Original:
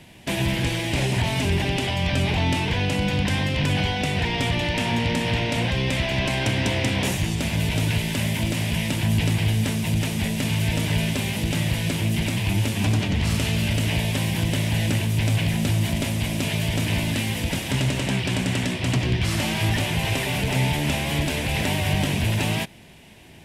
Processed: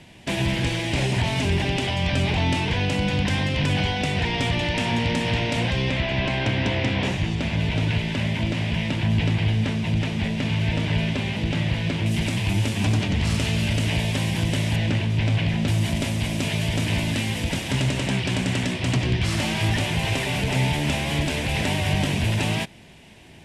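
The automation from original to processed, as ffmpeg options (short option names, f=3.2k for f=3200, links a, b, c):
-af "asetnsamples=n=441:p=0,asendcmd='5.9 lowpass f 3900;12.06 lowpass f 8900;14.76 lowpass f 4200;15.68 lowpass f 9400',lowpass=8.6k"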